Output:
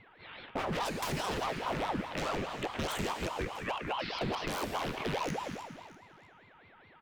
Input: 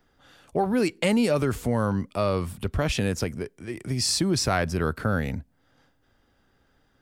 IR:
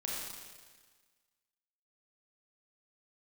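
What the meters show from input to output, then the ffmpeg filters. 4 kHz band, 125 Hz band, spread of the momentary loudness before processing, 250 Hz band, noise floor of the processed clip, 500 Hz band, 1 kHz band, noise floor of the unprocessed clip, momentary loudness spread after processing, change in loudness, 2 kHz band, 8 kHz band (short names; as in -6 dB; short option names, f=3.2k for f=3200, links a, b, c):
-7.5 dB, -13.5 dB, 9 LU, -13.0 dB, -59 dBFS, -10.0 dB, -2.5 dB, -67 dBFS, 11 LU, -9.5 dB, -5.5 dB, -13.0 dB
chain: -filter_complex "[0:a]equalizer=f=2.4k:w=1.1:g=12.5,highpass=f=200:t=q:w=0.5412,highpass=f=200:t=q:w=1.307,lowpass=f=3.5k:t=q:w=0.5176,lowpass=f=3.5k:t=q:w=0.7071,lowpass=f=3.5k:t=q:w=1.932,afreqshift=-220,aeval=exprs='val(0)+0.00178*sin(2*PI*1100*n/s)':c=same,aeval=exprs='0.0708*(abs(mod(val(0)/0.0708+3,4)-2)-1)':c=same,aecho=1:1:321|642|963:0.112|0.0381|0.013,asplit=2[a][b];[1:a]atrim=start_sample=2205,asetrate=57330,aresample=44100[c];[b][c]afir=irnorm=-1:irlink=0,volume=-2.5dB[d];[a][d]amix=inputs=2:normalize=0,acrossover=split=350|1500[e][f][g];[e]acompressor=threshold=-30dB:ratio=4[h];[f]acompressor=threshold=-43dB:ratio=4[i];[g]acompressor=threshold=-38dB:ratio=4[j];[h][i][j]amix=inputs=3:normalize=0,aeval=exprs='val(0)*sin(2*PI*580*n/s+580*0.75/4.8*sin(2*PI*4.8*n/s))':c=same"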